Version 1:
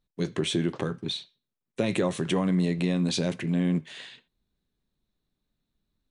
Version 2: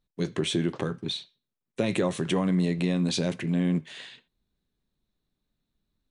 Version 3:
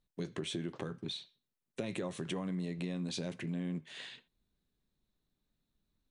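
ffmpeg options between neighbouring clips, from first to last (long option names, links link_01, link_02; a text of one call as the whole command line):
ffmpeg -i in.wav -af anull out.wav
ffmpeg -i in.wav -af "acompressor=threshold=-37dB:ratio=2.5,volume=-2.5dB" out.wav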